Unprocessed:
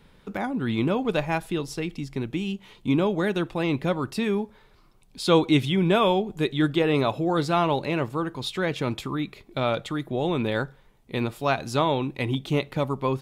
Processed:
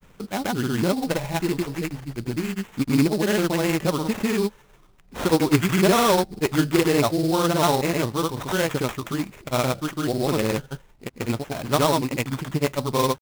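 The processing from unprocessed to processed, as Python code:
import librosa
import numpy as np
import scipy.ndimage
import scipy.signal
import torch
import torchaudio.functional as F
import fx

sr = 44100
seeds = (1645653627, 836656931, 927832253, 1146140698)

y = fx.granulator(x, sr, seeds[0], grain_ms=100.0, per_s=20.0, spray_ms=100.0, spread_st=0)
y = fx.sample_hold(y, sr, seeds[1], rate_hz=4700.0, jitter_pct=20)
y = y * 10.0 ** (4.0 / 20.0)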